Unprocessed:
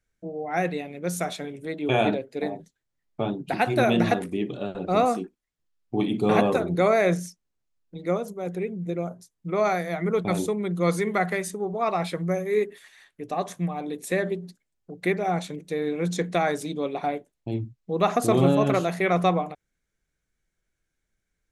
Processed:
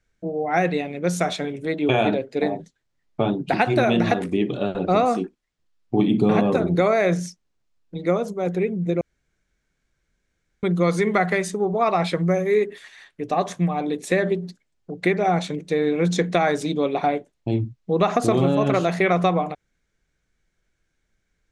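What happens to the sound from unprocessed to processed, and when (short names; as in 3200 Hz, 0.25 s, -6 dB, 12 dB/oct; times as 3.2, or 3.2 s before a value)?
5.99–6.67 bell 180 Hz +7 dB 1.9 oct
9.01–10.63 room tone
whole clip: LPF 6800 Hz 12 dB/oct; compressor, threshold -22 dBFS; gain +7 dB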